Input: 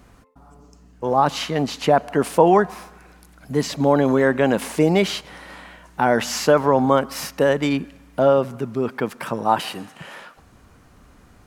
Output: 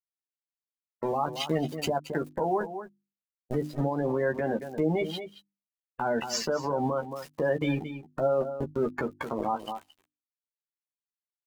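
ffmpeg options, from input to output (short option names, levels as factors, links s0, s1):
-filter_complex "[0:a]aeval=exprs='val(0)*gte(abs(val(0)),0.0631)':c=same,asettb=1/sr,asplit=3[s0][s1][s2];[s0]atrim=end=1.064[s3];[s1]atrim=start=1.06:end=3.64,asetpts=PTS-STARTPTS,afade=t=in:d=0.004:c=qsin,afade=t=out:st=2.576:d=0.004:c=qsin,highshelf=f=6300:g=6[s4];[s2]atrim=start=3.636[s5];[s3][s4]acrossfade=d=0.004:c1=hsin:c2=qsin[s6];[s6][s5]acrossfade=d=0.004:c1=qsin:c2=hsin,acompressor=threshold=0.0631:ratio=20,afftdn=nr=22:nf=-31,aecho=1:1:224:0.178,alimiter=level_in=1.12:limit=0.0631:level=0:latency=1:release=85,volume=0.891,bandreject=f=50:t=h:w=6,bandreject=f=100:t=h:w=6,bandreject=f=150:t=h:w=6,bandreject=f=200:t=h:w=6,bandreject=f=250:t=h:w=6,bandreject=f=300:t=h:w=6,bandreject=f=350:t=h:w=6,asplit=2[s7][s8];[s8]adelay=13,volume=0.501[s9];[s7][s9]amix=inputs=2:normalize=0,volume=2"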